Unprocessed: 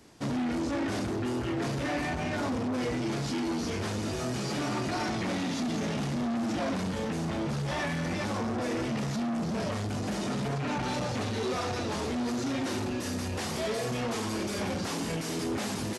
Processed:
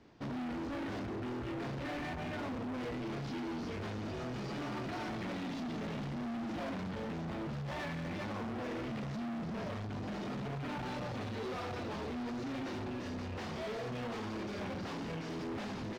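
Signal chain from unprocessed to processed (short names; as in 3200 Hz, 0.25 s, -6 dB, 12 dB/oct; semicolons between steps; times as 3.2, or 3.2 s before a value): air absorption 210 m; hard clip -33.5 dBFS, distortion -11 dB; gain -4 dB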